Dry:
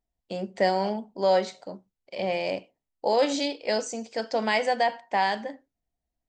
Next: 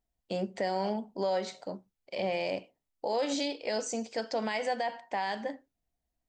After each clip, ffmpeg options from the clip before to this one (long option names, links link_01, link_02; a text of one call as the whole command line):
ffmpeg -i in.wav -af "alimiter=limit=-22dB:level=0:latency=1:release=154" out.wav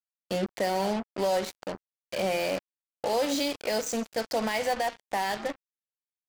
ffmpeg -i in.wav -af "acrusher=bits=5:mix=0:aa=0.5,volume=3.5dB" out.wav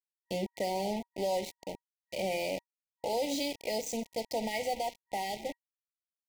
ffmpeg -i in.wav -af "aeval=exprs='val(0)*gte(abs(val(0)),0.015)':channel_layout=same,afftfilt=real='re*(1-between(b*sr/4096,950,1900))':imag='im*(1-between(b*sr/4096,950,1900))':win_size=4096:overlap=0.75,volume=-5dB" out.wav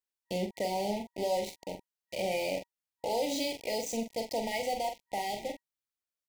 ffmpeg -i in.wav -filter_complex "[0:a]asplit=2[link_01][link_02];[link_02]adelay=44,volume=-7dB[link_03];[link_01][link_03]amix=inputs=2:normalize=0" out.wav